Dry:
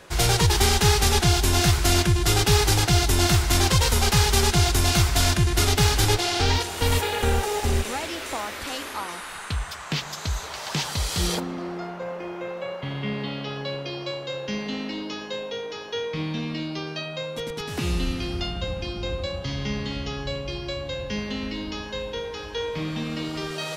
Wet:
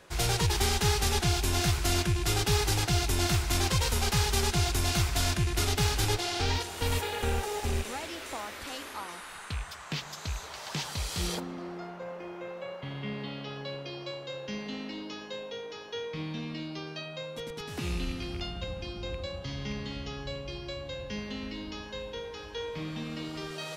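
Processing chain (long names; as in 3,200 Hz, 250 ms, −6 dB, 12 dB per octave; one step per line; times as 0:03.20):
loose part that buzzes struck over −23 dBFS, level −24 dBFS
level −7.5 dB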